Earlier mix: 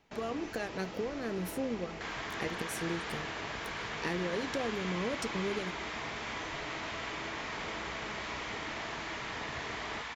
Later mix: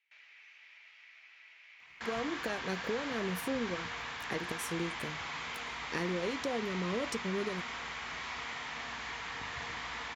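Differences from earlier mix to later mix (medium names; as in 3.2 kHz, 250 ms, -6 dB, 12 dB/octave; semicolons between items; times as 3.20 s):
speech: entry +1.90 s; first sound: add ladder band-pass 2.5 kHz, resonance 60%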